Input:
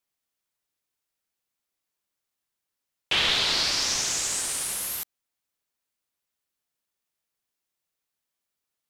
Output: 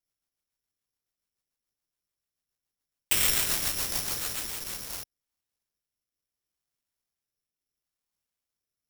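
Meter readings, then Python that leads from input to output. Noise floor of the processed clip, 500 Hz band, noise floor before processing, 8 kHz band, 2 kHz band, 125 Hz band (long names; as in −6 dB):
below −85 dBFS, −5.0 dB, −85 dBFS, −3.5 dB, −6.0 dB, +0.5 dB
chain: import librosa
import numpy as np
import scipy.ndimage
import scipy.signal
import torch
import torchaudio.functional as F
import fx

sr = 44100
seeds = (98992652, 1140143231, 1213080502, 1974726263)

y = scipy.ndimage.median_filter(x, 9, mode='constant')
y = fx.low_shelf(y, sr, hz=140.0, db=10.0)
y = fx.rotary_switch(y, sr, hz=7.0, then_hz=0.7, switch_at_s=4.42)
y = (np.kron(y[::8], np.eye(8)[0]) * 8)[:len(y)]
y = F.gain(torch.from_numpy(y), -5.0).numpy()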